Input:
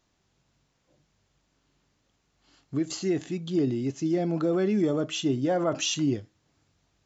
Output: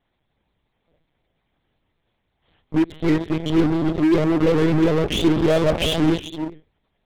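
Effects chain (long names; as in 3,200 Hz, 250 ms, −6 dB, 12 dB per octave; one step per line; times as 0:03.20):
notch comb filter 1,400 Hz
reverb whose tail is shaped and stops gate 440 ms rising, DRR 10 dB
one-pitch LPC vocoder at 8 kHz 160 Hz
in parallel at −7 dB: fuzz pedal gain 31 dB, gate −34 dBFS
on the sum: pitch modulation by a square or saw wave saw up 5.5 Hz, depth 100 cents
level +2.5 dB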